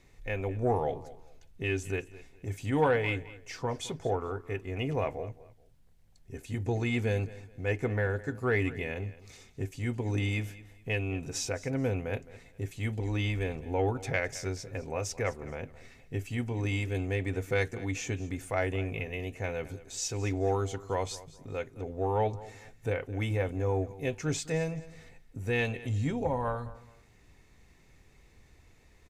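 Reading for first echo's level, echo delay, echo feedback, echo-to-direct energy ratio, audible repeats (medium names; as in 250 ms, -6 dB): -18.0 dB, 214 ms, 27%, -17.5 dB, 2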